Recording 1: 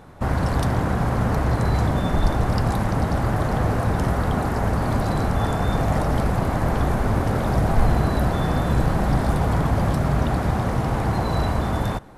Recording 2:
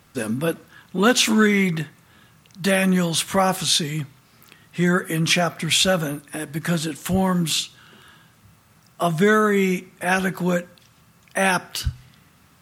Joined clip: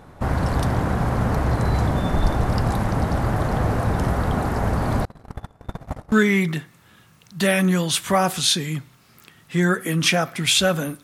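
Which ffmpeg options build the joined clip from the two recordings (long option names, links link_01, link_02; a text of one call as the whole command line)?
ffmpeg -i cue0.wav -i cue1.wav -filter_complex "[0:a]asettb=1/sr,asplit=3[link_01][link_02][link_03];[link_01]atrim=end=5.054[link_04];[link_02]atrim=start=5.05:end=6.12,asetpts=PTS-STARTPTS,afade=type=in:duration=0.004:curve=qsin,afade=type=out:start_time=1.066:duration=0.004:curve=qsin,agate=range=-35dB:threshold=-18dB:ratio=16:release=100:detection=peak[link_05];[link_03]atrim=start=6.116[link_06];[link_04][link_05]acrossfade=duration=0.004:curve1=hsin:curve2=qsin[link_07];[link_07][link_06]acrossfade=duration=0.004:curve1=qsin:curve2=hsin,apad=whole_dur=11.03,atrim=end=11.03,atrim=end=6.122[link_08];[1:a]atrim=start=1.358:end=6.27[link_09];[link_08][link_09]acrossfade=duration=0.004:curve1=hsin:curve2=hsin" out.wav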